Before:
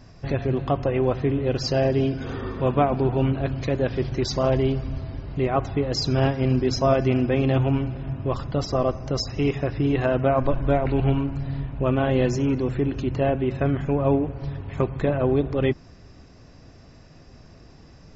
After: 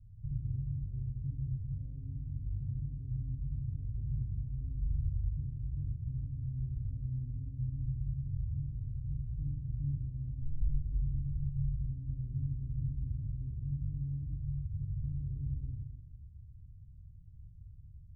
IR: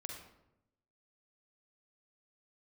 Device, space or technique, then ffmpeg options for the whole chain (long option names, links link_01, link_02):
club heard from the street: -filter_complex "[0:a]alimiter=limit=-18.5dB:level=0:latency=1,lowpass=frequency=120:width=0.5412,lowpass=frequency=120:width=1.3066[link_01];[1:a]atrim=start_sample=2205[link_02];[link_01][link_02]afir=irnorm=-1:irlink=0"